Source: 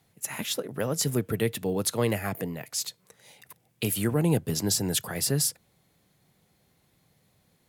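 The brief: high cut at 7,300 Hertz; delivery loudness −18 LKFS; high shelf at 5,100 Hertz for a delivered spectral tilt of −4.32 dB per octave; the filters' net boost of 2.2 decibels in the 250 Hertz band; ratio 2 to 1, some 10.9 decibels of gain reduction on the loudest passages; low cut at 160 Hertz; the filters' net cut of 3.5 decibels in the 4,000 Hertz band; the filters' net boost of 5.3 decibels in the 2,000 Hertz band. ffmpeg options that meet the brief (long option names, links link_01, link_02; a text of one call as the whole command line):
ffmpeg -i in.wav -af "highpass=160,lowpass=7300,equalizer=frequency=250:width_type=o:gain=4.5,equalizer=frequency=2000:width_type=o:gain=8,equalizer=frequency=4000:width_type=o:gain=-4,highshelf=frequency=5100:gain=-4.5,acompressor=threshold=-40dB:ratio=2,volume=19.5dB" out.wav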